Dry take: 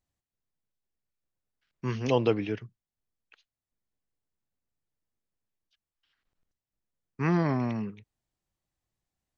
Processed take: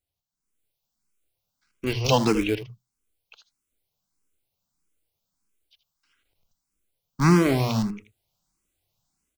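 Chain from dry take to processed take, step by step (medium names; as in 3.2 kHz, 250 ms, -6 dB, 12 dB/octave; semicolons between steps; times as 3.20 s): band-stop 1.8 kHz, Q 5; in parallel at -3.5 dB: Schmitt trigger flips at -27 dBFS; on the sum: treble shelf 3.1 kHz +7.5 dB; hum notches 60/120 Hz; delay 79 ms -13 dB; level rider gain up to 10.5 dB; dynamic bell 4.7 kHz, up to +6 dB, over -43 dBFS, Q 1; barber-pole phaser +1.6 Hz; trim -1 dB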